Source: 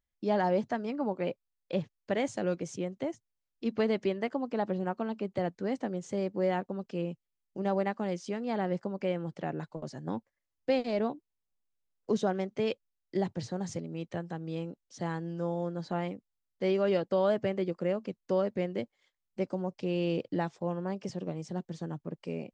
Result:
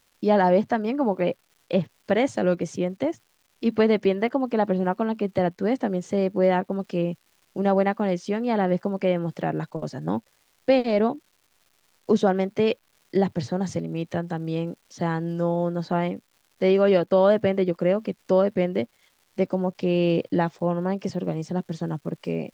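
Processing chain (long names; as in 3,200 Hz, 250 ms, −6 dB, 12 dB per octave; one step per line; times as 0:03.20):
surface crackle 480 per second −58 dBFS
dynamic equaliser 7,300 Hz, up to −6 dB, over −58 dBFS, Q 0.79
level +9 dB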